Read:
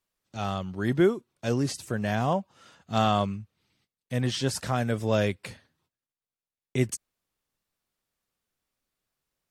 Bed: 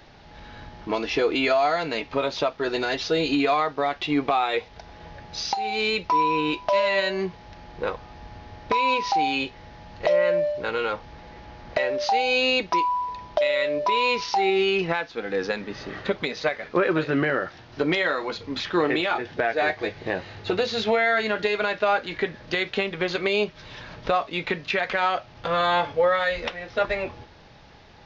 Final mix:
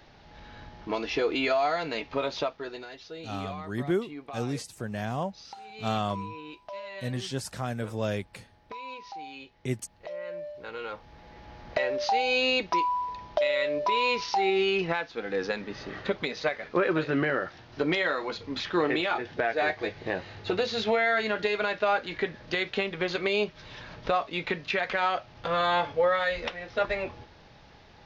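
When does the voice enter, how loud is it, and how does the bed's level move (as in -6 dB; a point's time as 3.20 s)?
2.90 s, -5.5 dB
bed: 2.41 s -4.5 dB
2.92 s -18.5 dB
10.07 s -18.5 dB
11.56 s -3.5 dB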